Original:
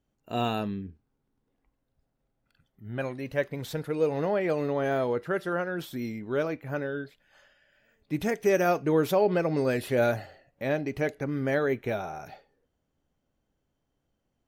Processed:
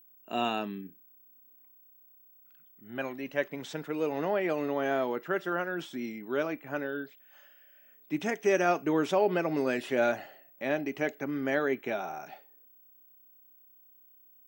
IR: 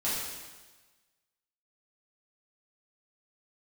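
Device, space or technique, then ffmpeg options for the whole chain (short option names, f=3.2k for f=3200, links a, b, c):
old television with a line whistle: -af "highpass=f=190:w=0.5412,highpass=f=190:w=1.3066,equalizer=f=210:t=q:w=4:g=-4,equalizer=f=490:t=q:w=4:g=-7,equalizer=f=2.9k:t=q:w=4:g=3,equalizer=f=4.3k:t=q:w=4:g=-7,lowpass=f=7.8k:w=0.5412,lowpass=f=7.8k:w=1.3066,aeval=exprs='val(0)+0.00158*sin(2*PI*15734*n/s)':c=same"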